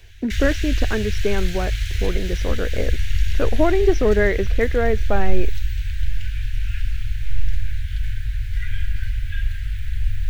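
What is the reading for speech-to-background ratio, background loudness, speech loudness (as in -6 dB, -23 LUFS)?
3.5 dB, -27.0 LUFS, -23.5 LUFS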